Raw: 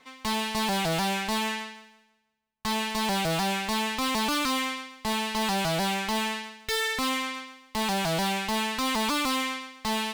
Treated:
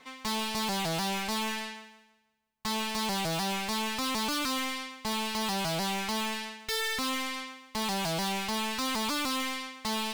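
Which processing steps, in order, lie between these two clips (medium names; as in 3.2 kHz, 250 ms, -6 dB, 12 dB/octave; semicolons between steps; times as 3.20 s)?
dynamic bell 5.3 kHz, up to +7 dB, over -47 dBFS, Q 1.2; saturation -31.5 dBFS, distortion -9 dB; trim +2 dB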